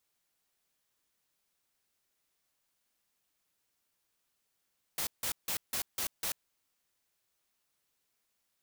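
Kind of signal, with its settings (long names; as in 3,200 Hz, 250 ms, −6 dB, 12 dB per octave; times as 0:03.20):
noise bursts white, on 0.09 s, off 0.16 s, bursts 6, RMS −34 dBFS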